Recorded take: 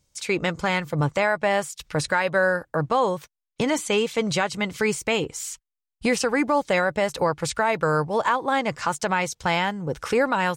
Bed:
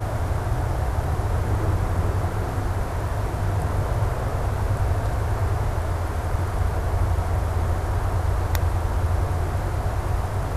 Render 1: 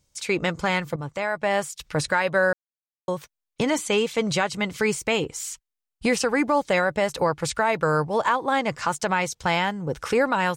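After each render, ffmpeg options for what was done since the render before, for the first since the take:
ffmpeg -i in.wav -filter_complex "[0:a]asplit=4[link_01][link_02][link_03][link_04];[link_01]atrim=end=0.96,asetpts=PTS-STARTPTS,afade=type=out:start_time=0.956:duration=0.004:curve=hsin:silence=0.211349[link_05];[link_02]atrim=start=0.96:end=2.53,asetpts=PTS-STARTPTS,afade=type=in:duration=0.66:silence=0.211349,afade=type=out:start_time=1.566:duration=0.004:curve=hsin[link_06];[link_03]atrim=start=2.53:end=3.08,asetpts=PTS-STARTPTS,volume=0[link_07];[link_04]atrim=start=3.08,asetpts=PTS-STARTPTS,afade=type=in:duration=0.004:curve=hsin[link_08];[link_05][link_06][link_07][link_08]concat=n=4:v=0:a=1" out.wav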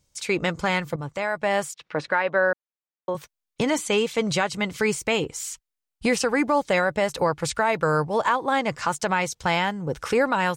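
ffmpeg -i in.wav -filter_complex "[0:a]asettb=1/sr,asplit=3[link_01][link_02][link_03];[link_01]atrim=end=1.744[link_04];[link_02]atrim=start=1.74:end=3.15,asetpts=PTS-STARTPTS,afade=type=in:duration=0.004:curve=qsin,afade=type=out:start_time=1.406:duration=0.004:curve=qsin,highpass=240,lowpass=2700[link_05];[link_03]atrim=start=3.146[link_06];[link_04][link_05]acrossfade=duration=0.004:curve1=hsin:curve2=qsin[link_07];[link_07][link_06]acrossfade=duration=0.004:curve1=qsin:curve2=hsin" out.wav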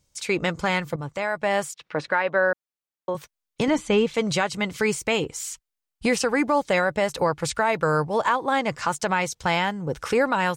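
ffmpeg -i in.wav -filter_complex "[0:a]asettb=1/sr,asplit=3[link_01][link_02][link_03];[link_01]atrim=end=3.684[link_04];[link_02]atrim=start=3.68:end=4.14,asetpts=PTS-STARTPTS,afade=type=in:duration=0.004:curve=qsin,afade=type=out:start_time=0.456:duration=0.004:curve=qsin,aemphasis=mode=reproduction:type=bsi[link_05];[link_03]atrim=start=4.136[link_06];[link_04][link_05]acrossfade=duration=0.004:curve1=hsin:curve2=qsin[link_07];[link_07][link_06]acrossfade=duration=0.004:curve1=qsin:curve2=hsin" out.wav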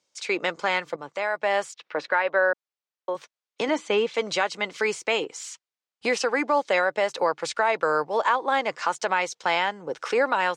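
ffmpeg -i in.wav -filter_complex "[0:a]highpass=150,acrossover=split=300 7300:gain=0.1 1 0.0708[link_01][link_02][link_03];[link_01][link_02][link_03]amix=inputs=3:normalize=0" out.wav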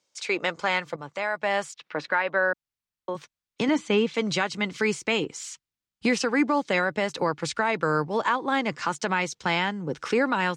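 ffmpeg -i in.wav -af "asubboost=boost=9.5:cutoff=190" out.wav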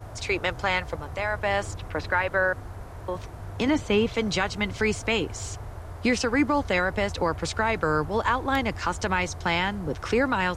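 ffmpeg -i in.wav -i bed.wav -filter_complex "[1:a]volume=-14dB[link_01];[0:a][link_01]amix=inputs=2:normalize=0" out.wav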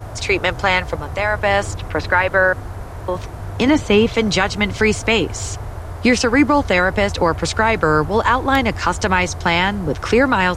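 ffmpeg -i in.wav -af "volume=9dB,alimiter=limit=-2dB:level=0:latency=1" out.wav

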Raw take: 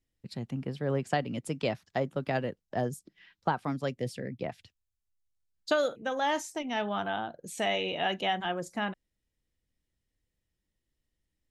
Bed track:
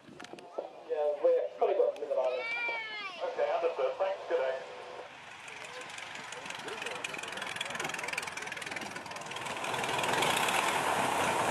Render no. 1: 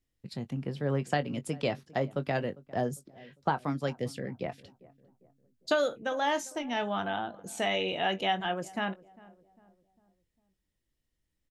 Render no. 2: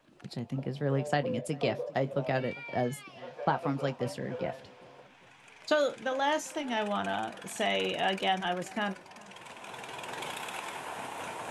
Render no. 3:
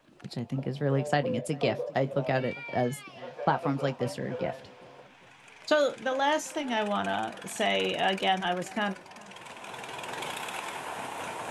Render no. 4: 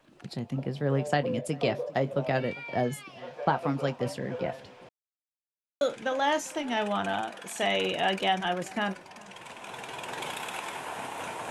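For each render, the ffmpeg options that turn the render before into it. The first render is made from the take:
ffmpeg -i in.wav -filter_complex "[0:a]asplit=2[link_01][link_02];[link_02]adelay=21,volume=-12dB[link_03];[link_01][link_03]amix=inputs=2:normalize=0,asplit=2[link_04][link_05];[link_05]adelay=401,lowpass=frequency=990:poles=1,volume=-20.5dB,asplit=2[link_06][link_07];[link_07]adelay=401,lowpass=frequency=990:poles=1,volume=0.49,asplit=2[link_08][link_09];[link_09]adelay=401,lowpass=frequency=990:poles=1,volume=0.49,asplit=2[link_10][link_11];[link_11]adelay=401,lowpass=frequency=990:poles=1,volume=0.49[link_12];[link_04][link_06][link_08][link_10][link_12]amix=inputs=5:normalize=0" out.wav
ffmpeg -i in.wav -i bed.wav -filter_complex "[1:a]volume=-9.5dB[link_01];[0:a][link_01]amix=inputs=2:normalize=0" out.wav
ffmpeg -i in.wav -af "volume=2.5dB" out.wav
ffmpeg -i in.wav -filter_complex "[0:a]asettb=1/sr,asplit=3[link_01][link_02][link_03];[link_01]atrim=end=7.214[link_04];[link_02]atrim=start=7.21:end=7.63,asetpts=PTS-STARTPTS,afade=type=in:duration=0.004:curve=qsin,afade=type=out:start_time=0.416:duration=0.004:curve=qsin,highpass=frequency=320:poles=1[link_05];[link_03]atrim=start=7.626[link_06];[link_04][link_05]acrossfade=duration=0.004:curve1=hsin:curve2=qsin[link_07];[link_07][link_06]acrossfade=duration=0.004:curve1=qsin:curve2=hsin,asplit=3[link_08][link_09][link_10];[link_08]atrim=end=4.89,asetpts=PTS-STARTPTS,afade=type=out:start_time=4.886:duration=0.004:curve=hsin[link_11];[link_09]atrim=start=4.89:end=5.81,asetpts=PTS-STARTPTS,volume=0[link_12];[link_10]atrim=start=5.81,asetpts=PTS-STARTPTS,afade=type=in:duration=0.004:curve=hsin[link_13];[link_11][link_12][link_13]concat=n=3:v=0:a=1" out.wav

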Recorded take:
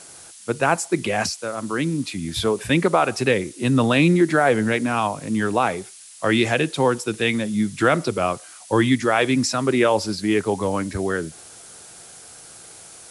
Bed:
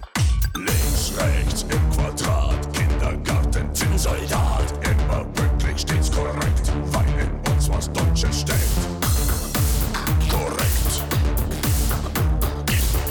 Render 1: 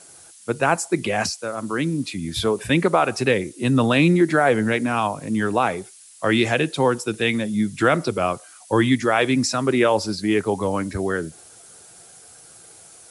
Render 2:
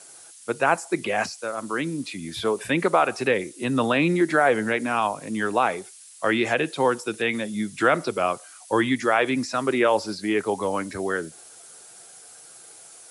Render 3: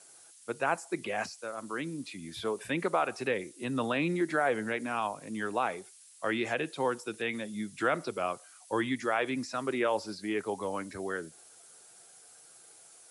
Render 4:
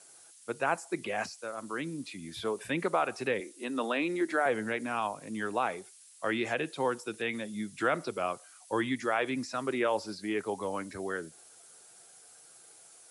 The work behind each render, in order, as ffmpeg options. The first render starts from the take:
ffmpeg -i in.wav -af "afftdn=noise_reduction=6:noise_floor=-44" out.wav
ffmpeg -i in.wav -filter_complex "[0:a]acrossover=split=2600[link_01][link_02];[link_02]acompressor=threshold=-33dB:ratio=4:attack=1:release=60[link_03];[link_01][link_03]amix=inputs=2:normalize=0,highpass=frequency=390:poles=1" out.wav
ffmpeg -i in.wav -af "volume=-9dB" out.wav
ffmpeg -i in.wav -filter_complex "[0:a]asettb=1/sr,asplit=3[link_01][link_02][link_03];[link_01]atrim=end=3.404[link_04];[link_02]atrim=start=3.4:end=4.46,asetpts=PTS-STARTPTS,afade=type=in:duration=0.004:curve=qsin,afade=type=out:start_time=1.056:duration=0.004:curve=qsin,highpass=frequency=240:width=0.5412,highpass=frequency=240:width=1.3066[link_05];[link_03]atrim=start=4.456[link_06];[link_04][link_05]acrossfade=duration=0.004:curve1=hsin:curve2=qsin[link_07];[link_07][link_06]acrossfade=duration=0.004:curve1=qsin:curve2=hsin" out.wav

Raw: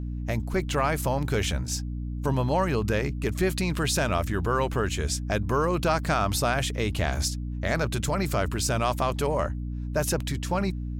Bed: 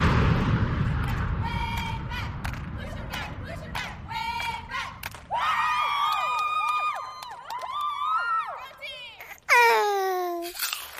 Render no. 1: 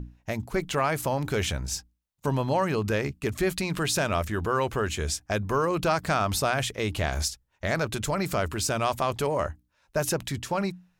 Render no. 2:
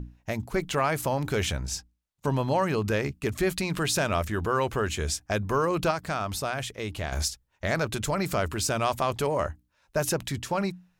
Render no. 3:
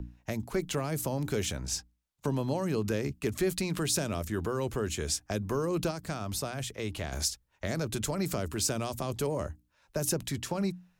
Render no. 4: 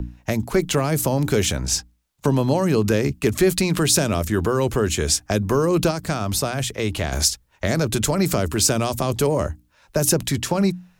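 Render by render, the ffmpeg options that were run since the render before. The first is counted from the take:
ffmpeg -i in.wav -af "bandreject=frequency=60:width_type=h:width=6,bandreject=frequency=120:width_type=h:width=6,bandreject=frequency=180:width_type=h:width=6,bandreject=frequency=240:width_type=h:width=6,bandreject=frequency=300:width_type=h:width=6" out.wav
ffmpeg -i in.wav -filter_complex "[0:a]asettb=1/sr,asplit=3[link_01][link_02][link_03];[link_01]atrim=end=1.564[link_04];[link_02]atrim=start=1.56:end=2.37,asetpts=PTS-STARTPTS,afade=type=in:duration=0.004:curve=qsin,afade=type=out:start_time=0.806:duration=0.004:curve=qsin,highshelf=frequency=12000:gain=-7.5[link_05];[link_03]atrim=start=2.366[link_06];[link_04][link_05]acrossfade=duration=0.004:curve1=hsin:curve2=qsin[link_07];[link_07][link_06]acrossfade=duration=0.004:curve1=qsin:curve2=hsin,asplit=3[link_08][link_09][link_10];[link_08]atrim=end=5.912[link_11];[link_09]atrim=start=5.908:end=7.122,asetpts=PTS-STARTPTS,volume=-5dB[link_12];[link_10]atrim=start=7.118[link_13];[link_11][link_12]acrossfade=duration=0.004:curve1=hsin:curve2=hsin[link_14];[link_14][link_13]acrossfade=duration=0.004:curve1=hsin:curve2=hsin" out.wav
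ffmpeg -i in.wav -filter_complex "[0:a]acrossover=split=180|430|4500[link_01][link_02][link_03][link_04];[link_01]alimiter=level_in=9dB:limit=-24dB:level=0:latency=1:release=331,volume=-9dB[link_05];[link_03]acompressor=threshold=-38dB:ratio=6[link_06];[link_05][link_02][link_06][link_04]amix=inputs=4:normalize=0" out.wav
ffmpeg -i in.wav -af "volume=11.5dB" out.wav

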